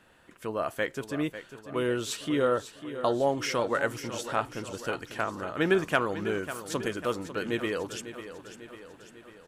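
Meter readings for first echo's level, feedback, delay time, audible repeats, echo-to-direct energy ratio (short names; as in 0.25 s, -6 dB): -12.0 dB, 56%, 0.547 s, 5, -10.5 dB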